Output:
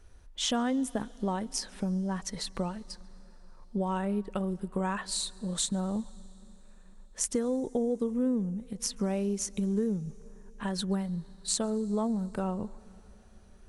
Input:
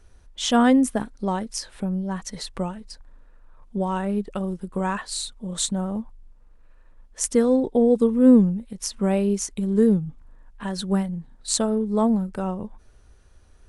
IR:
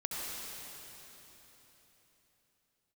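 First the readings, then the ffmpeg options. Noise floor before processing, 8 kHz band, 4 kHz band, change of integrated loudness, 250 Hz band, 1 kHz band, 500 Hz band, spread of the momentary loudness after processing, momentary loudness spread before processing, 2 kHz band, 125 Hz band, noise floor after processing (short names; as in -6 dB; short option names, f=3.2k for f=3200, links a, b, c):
-53 dBFS, -4.5 dB, -4.0 dB, -9.0 dB, -9.5 dB, -8.0 dB, -10.0 dB, 7 LU, 15 LU, -8.0 dB, -6.5 dB, -54 dBFS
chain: -filter_complex "[0:a]acompressor=threshold=-24dB:ratio=6,asplit=2[a][b];[1:a]atrim=start_sample=2205,adelay=139[c];[b][c]afir=irnorm=-1:irlink=0,volume=-26dB[d];[a][d]amix=inputs=2:normalize=0,volume=-2.5dB"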